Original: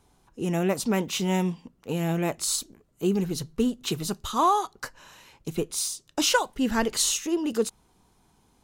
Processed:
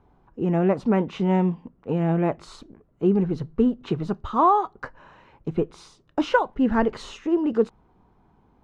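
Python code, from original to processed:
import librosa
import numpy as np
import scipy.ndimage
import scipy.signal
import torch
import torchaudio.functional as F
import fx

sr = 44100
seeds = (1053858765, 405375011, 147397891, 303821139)

y = scipy.signal.sosfilt(scipy.signal.butter(2, 1400.0, 'lowpass', fs=sr, output='sos'), x)
y = y * 10.0 ** (4.5 / 20.0)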